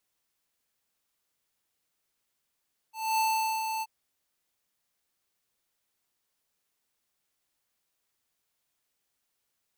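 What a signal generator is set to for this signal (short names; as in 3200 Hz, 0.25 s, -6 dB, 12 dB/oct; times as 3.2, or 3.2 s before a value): ADSR square 884 Hz, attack 0.249 s, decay 0.44 s, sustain -6.5 dB, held 0.89 s, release 40 ms -25.5 dBFS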